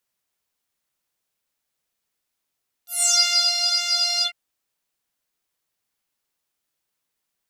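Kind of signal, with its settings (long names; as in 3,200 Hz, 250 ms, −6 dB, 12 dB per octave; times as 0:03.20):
subtractive patch with pulse-width modulation F5, oscillator 2 saw, sub −28 dB, noise −28.5 dB, filter bandpass, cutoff 2,400 Hz, Q 8.3, filter envelope 2.5 octaves, filter decay 0.33 s, attack 156 ms, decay 0.51 s, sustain −6 dB, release 0.09 s, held 1.36 s, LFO 1.8 Hz, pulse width 29%, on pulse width 15%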